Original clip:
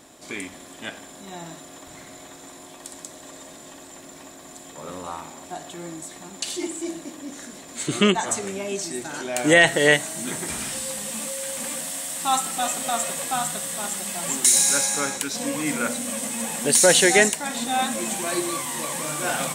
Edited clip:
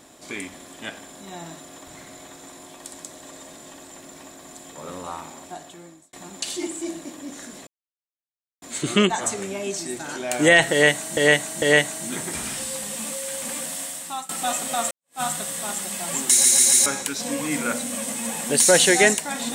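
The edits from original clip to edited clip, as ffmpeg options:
ffmpeg -i in.wav -filter_complex "[0:a]asplit=11[link_01][link_02][link_03][link_04][link_05][link_06][link_07][link_08][link_09][link_10][link_11];[link_01]atrim=end=6.13,asetpts=PTS-STARTPTS,afade=type=out:start_time=5.36:duration=0.77[link_12];[link_02]atrim=start=6.13:end=7.67,asetpts=PTS-STARTPTS,afade=type=in:duration=0.004:curve=hsin,afade=type=out:start_time=1.536:duration=0.004:curve=hsin,apad=pad_dur=0.95[link_13];[link_03]atrim=start=7.67:end=10.222,asetpts=PTS-STARTPTS,afade=type=in:duration=0.004:curve=hsin[link_14];[link_04]atrim=start=9.768:end=10.222[link_15];[link_05]atrim=start=9.768:end=12.44,asetpts=PTS-STARTPTS,afade=type=out:start_time=2.202:duration=0.47:silence=0.0944061[link_16];[link_06]atrim=start=12.44:end=13.06,asetpts=PTS-STARTPTS,afade=type=in:duration=0.004:curve=hsin:silence=0.0944061,afade=type=out:start_time=0.616:duration=0.004:curve=hsin[link_17];[link_07]atrim=start=13.06:end=14.592,asetpts=PTS-STARTPTS,afade=type=in:duration=0.3:curve=exp[link_18];[link_08]atrim=start=14.448:end=14.592[link_19];[link_09]atrim=start=14.448:end=14.592[link_20];[link_10]atrim=start=14.448:end=14.592[link_21];[link_11]atrim=start=15.008[link_22];[link_12][link_13][link_14]concat=n=3:v=0:a=1[link_23];[link_23][link_15]acrossfade=duration=0.004:curve1=hsin:curve2=hsin[link_24];[link_16][link_17][link_18]concat=n=3:v=0:a=1[link_25];[link_24][link_25]acrossfade=duration=0.004:curve1=hsin:curve2=hsin[link_26];[link_26][link_19]acrossfade=duration=0.004:curve1=hsin:curve2=hsin[link_27];[link_27][link_20]acrossfade=duration=0.004:curve1=hsin:curve2=hsin[link_28];[link_28][link_21]acrossfade=duration=0.004:curve1=hsin:curve2=hsin[link_29];[link_29][link_22]acrossfade=duration=0.004:curve1=hsin:curve2=hsin" out.wav

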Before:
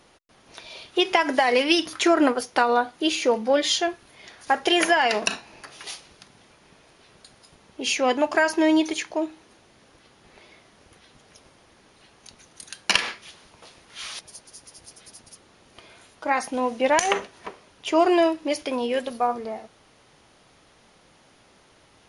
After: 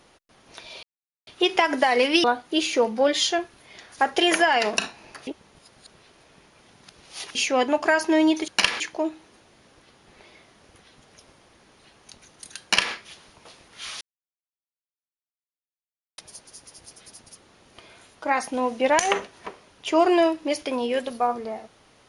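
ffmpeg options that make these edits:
ffmpeg -i in.wav -filter_complex "[0:a]asplit=8[link_01][link_02][link_03][link_04][link_05][link_06][link_07][link_08];[link_01]atrim=end=0.83,asetpts=PTS-STARTPTS,afade=type=out:start_time=0.826:duration=0.004:curve=hsin,apad=pad_dur=0.44[link_09];[link_02]atrim=start=0.83:end=1.802,asetpts=PTS-STARTPTS,afade=type=in:duration=0.004:curve=hsin[link_10];[link_03]atrim=start=2.728:end=5.762[link_11];[link_04]atrim=start=5.758:end=7.842,asetpts=PTS-STARTPTS,areverse[link_12];[link_05]atrim=start=7.838:end=8.972[link_13];[link_06]atrim=start=12.788:end=13.112[link_14];[link_07]atrim=start=8.968:end=14.18,asetpts=PTS-STARTPTS,afade=type=out:start_time=5.208:duration=0.004:curve=hsin,apad=pad_dur=2.17[link_15];[link_08]atrim=start=14.18,asetpts=PTS-STARTPTS,afade=type=in:duration=0.004:curve=hsin[link_16];[link_09][link_10]concat=n=2:v=0:a=1[link_17];[link_17][link_11]acrossfade=duration=0.004:curve1=hsin:curve2=hsin[link_18];[link_18][link_12]acrossfade=duration=0.004:curve1=hsin:curve2=hsin[link_19];[link_19][link_13]acrossfade=duration=0.004:curve1=hsin:curve2=hsin[link_20];[link_20][link_14]acrossfade=duration=0.004:curve1=hsin:curve2=hsin[link_21];[link_15][link_16]concat=n=2:v=0:a=1[link_22];[link_21][link_22]acrossfade=duration=0.004:curve1=hsin:curve2=hsin" out.wav

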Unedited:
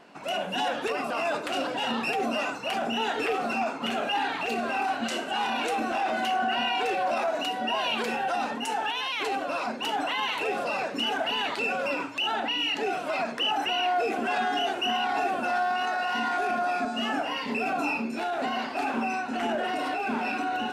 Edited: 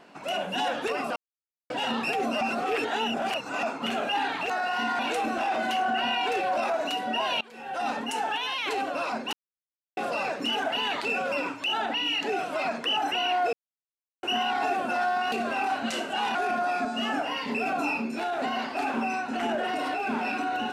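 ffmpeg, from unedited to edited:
ffmpeg -i in.wav -filter_complex "[0:a]asplit=14[link_01][link_02][link_03][link_04][link_05][link_06][link_07][link_08][link_09][link_10][link_11][link_12][link_13][link_14];[link_01]atrim=end=1.16,asetpts=PTS-STARTPTS,afade=type=out:start_time=1.156:duration=0.004:curve=hsin[link_15];[link_02]atrim=start=1.16:end=1.7,asetpts=PTS-STARTPTS,volume=0[link_16];[link_03]atrim=start=1.7:end=2.412,asetpts=PTS-STARTPTS,afade=type=in:duration=0.004:curve=hsin[link_17];[link_04]atrim=start=2.408:end=3.632,asetpts=PTS-STARTPTS,areverse[link_18];[link_05]atrim=start=3.628:end=4.502[link_19];[link_06]atrim=start=15.858:end=16.352[link_20];[link_07]atrim=start=5.528:end=7.95,asetpts=PTS-STARTPTS,afade=type=out:start_time=2.418:duration=0.004:curve=hsin:silence=0.0707946[link_21];[link_08]atrim=start=7.95:end=9.87,asetpts=PTS-STARTPTS,afade=type=in:duration=0.45:curve=qua:silence=0.0707946,afade=type=out:start_time=1.916:duration=0.004:curve=hsin[link_22];[link_09]atrim=start=9.87:end=10.51,asetpts=PTS-STARTPTS,volume=0[link_23];[link_10]atrim=start=10.51:end=14.07,asetpts=PTS-STARTPTS,afade=type=in:duration=0.004:curve=hsin,afade=type=out:start_time=3.556:duration=0.004:curve=hsin[link_24];[link_11]atrim=start=14.07:end=14.77,asetpts=PTS-STARTPTS,volume=0[link_25];[link_12]atrim=start=14.77:end=15.862,asetpts=PTS-STARTPTS,afade=type=in:duration=0.004:curve=hsin[link_26];[link_13]atrim=start=4.498:end=5.532[link_27];[link_14]atrim=start=16.348[link_28];[link_15][link_16][link_17]concat=n=3:v=0:a=1[link_29];[link_29][link_18]acrossfade=duration=0.004:curve1=hsin:curve2=hsin[link_30];[link_30][link_19]acrossfade=duration=0.004:curve1=hsin:curve2=hsin[link_31];[link_31][link_20]acrossfade=duration=0.004:curve1=hsin:curve2=hsin[link_32];[link_21][link_22][link_23][link_24][link_25][link_26]concat=n=6:v=0:a=1[link_33];[link_32][link_33]acrossfade=duration=0.004:curve1=hsin:curve2=hsin[link_34];[link_34][link_27]acrossfade=duration=0.004:curve1=hsin:curve2=hsin[link_35];[link_35][link_28]acrossfade=duration=0.004:curve1=hsin:curve2=hsin" out.wav

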